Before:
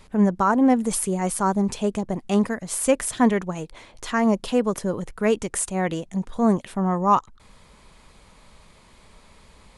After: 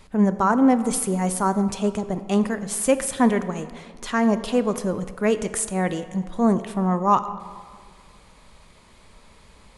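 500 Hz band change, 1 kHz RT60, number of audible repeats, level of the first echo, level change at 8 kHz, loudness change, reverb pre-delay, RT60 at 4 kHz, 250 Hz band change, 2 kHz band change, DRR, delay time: +0.5 dB, 1.8 s, no echo, no echo, 0.0 dB, +0.5 dB, 20 ms, 1.1 s, +0.5 dB, +0.5 dB, 11.5 dB, no echo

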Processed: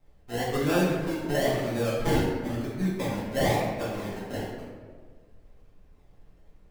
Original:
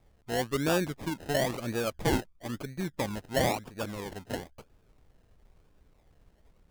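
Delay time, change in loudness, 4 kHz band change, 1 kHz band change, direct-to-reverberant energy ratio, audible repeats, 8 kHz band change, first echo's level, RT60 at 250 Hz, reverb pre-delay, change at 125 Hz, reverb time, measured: no echo, +3.5 dB, +0.5 dB, +3.0 dB, -9.0 dB, no echo, -0.5 dB, no echo, 1.8 s, 4 ms, +5.0 dB, 1.6 s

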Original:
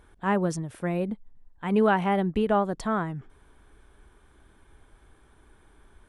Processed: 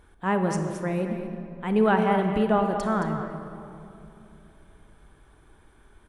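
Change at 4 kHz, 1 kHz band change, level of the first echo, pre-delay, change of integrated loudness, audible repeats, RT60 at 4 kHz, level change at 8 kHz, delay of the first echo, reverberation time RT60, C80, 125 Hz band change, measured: +1.0 dB, +1.5 dB, -9.5 dB, 29 ms, +1.0 dB, 1, 1.6 s, no reading, 220 ms, 2.9 s, 5.5 dB, +2.0 dB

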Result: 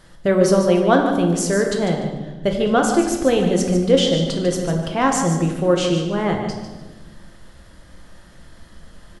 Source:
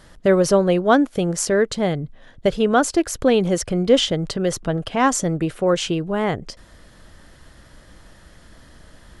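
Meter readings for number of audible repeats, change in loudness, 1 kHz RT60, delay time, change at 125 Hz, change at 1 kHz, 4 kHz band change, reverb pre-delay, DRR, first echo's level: 2, +1.0 dB, 1.1 s, 148 ms, +3.0 dB, +1.0 dB, +0.5 dB, 6 ms, 1.5 dB, -9.5 dB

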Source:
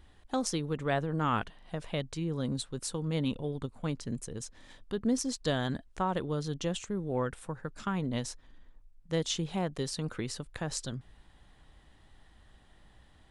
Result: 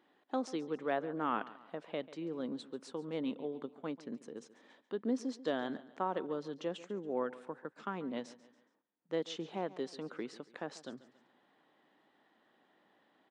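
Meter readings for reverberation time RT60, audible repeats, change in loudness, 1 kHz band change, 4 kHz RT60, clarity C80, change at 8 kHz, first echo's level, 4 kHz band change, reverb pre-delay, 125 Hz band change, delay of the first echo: no reverb, 3, -5.5 dB, -4.0 dB, no reverb, no reverb, -18.5 dB, -17.5 dB, -10.5 dB, no reverb, -18.0 dB, 140 ms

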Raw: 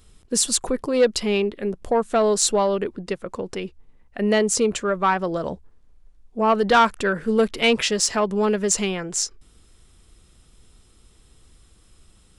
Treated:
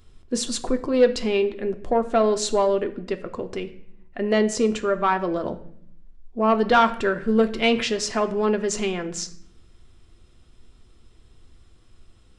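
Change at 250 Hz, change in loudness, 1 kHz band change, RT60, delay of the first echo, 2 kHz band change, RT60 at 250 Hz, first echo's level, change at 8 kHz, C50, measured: 0.0 dB, -1.5 dB, -1.0 dB, 0.65 s, no echo, -2.0 dB, 1.1 s, no echo, -8.5 dB, 14.5 dB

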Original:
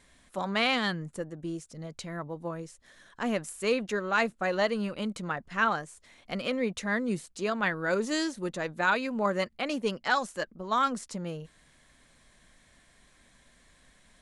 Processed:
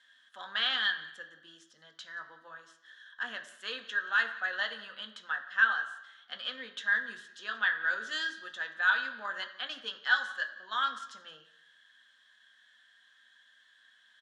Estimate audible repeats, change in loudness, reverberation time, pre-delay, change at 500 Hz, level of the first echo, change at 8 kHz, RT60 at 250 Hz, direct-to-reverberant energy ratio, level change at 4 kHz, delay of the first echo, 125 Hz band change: 1, -1.5 dB, 0.95 s, 3 ms, -19.5 dB, -20.5 dB, under -10 dB, 0.90 s, 4.5 dB, +2.0 dB, 177 ms, under -30 dB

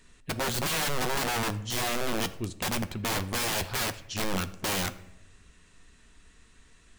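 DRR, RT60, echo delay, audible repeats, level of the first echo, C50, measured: 10.0 dB, 0.85 s, no echo, no echo, no echo, 16.0 dB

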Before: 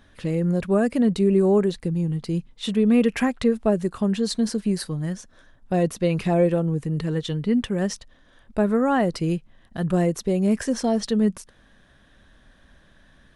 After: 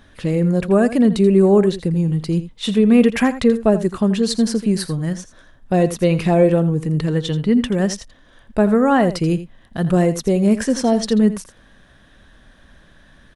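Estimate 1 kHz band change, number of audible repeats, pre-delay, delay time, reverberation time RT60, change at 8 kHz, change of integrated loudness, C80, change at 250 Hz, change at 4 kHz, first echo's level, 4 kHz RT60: +5.5 dB, 1, no reverb, 83 ms, no reverb, +5.5 dB, +5.5 dB, no reverb, +5.5 dB, +5.5 dB, -13.5 dB, no reverb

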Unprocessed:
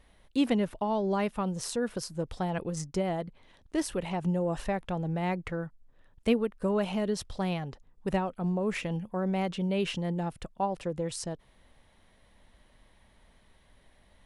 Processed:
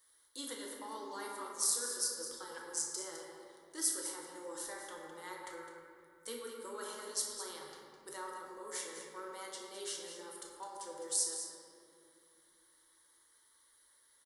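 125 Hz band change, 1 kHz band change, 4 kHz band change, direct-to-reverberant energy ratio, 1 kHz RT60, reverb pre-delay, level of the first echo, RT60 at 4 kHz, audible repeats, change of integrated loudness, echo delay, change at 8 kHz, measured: -37.0 dB, -11.5 dB, -2.5 dB, -3.0 dB, 2.1 s, 6 ms, -10.0 dB, 1.2 s, 1, -8.0 dB, 208 ms, +8.0 dB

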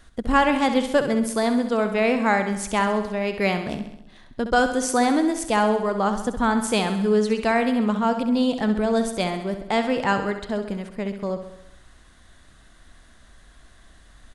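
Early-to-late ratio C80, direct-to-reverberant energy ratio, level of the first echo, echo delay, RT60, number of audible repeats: no reverb, no reverb, -9.5 dB, 66 ms, no reverb, 6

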